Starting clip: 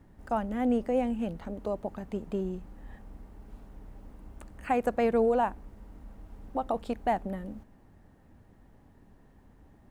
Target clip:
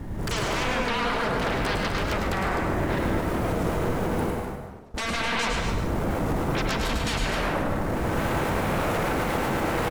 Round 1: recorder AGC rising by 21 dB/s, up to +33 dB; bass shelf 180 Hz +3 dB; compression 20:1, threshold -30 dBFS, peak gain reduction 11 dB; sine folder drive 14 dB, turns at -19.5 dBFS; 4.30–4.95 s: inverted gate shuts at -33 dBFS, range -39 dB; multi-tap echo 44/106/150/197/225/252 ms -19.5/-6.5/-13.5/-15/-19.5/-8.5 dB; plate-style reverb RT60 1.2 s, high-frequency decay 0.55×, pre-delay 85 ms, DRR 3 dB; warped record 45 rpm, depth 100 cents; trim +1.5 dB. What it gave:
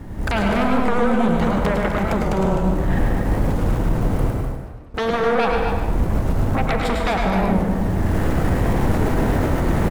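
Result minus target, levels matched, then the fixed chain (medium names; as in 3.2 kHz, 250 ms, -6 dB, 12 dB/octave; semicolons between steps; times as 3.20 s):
sine folder: distortion -27 dB
recorder AGC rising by 21 dB/s, up to +33 dB; bass shelf 180 Hz +3 dB; compression 20:1, threshold -30 dBFS, peak gain reduction 11 dB; sine folder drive 14 dB, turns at -27.5 dBFS; 4.30–4.95 s: inverted gate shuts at -33 dBFS, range -39 dB; multi-tap echo 44/106/150/197/225/252 ms -19.5/-6.5/-13.5/-15/-19.5/-8.5 dB; plate-style reverb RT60 1.2 s, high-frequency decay 0.55×, pre-delay 85 ms, DRR 3 dB; warped record 45 rpm, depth 100 cents; trim +1.5 dB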